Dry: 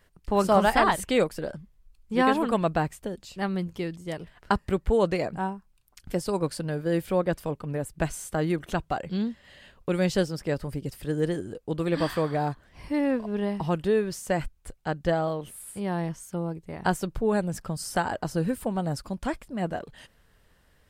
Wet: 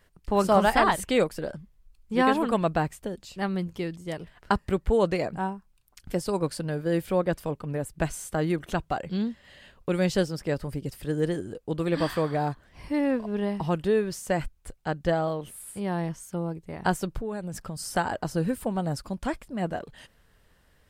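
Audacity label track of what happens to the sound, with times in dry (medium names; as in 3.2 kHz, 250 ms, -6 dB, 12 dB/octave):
17.200000	17.850000	compression 3:1, threshold -31 dBFS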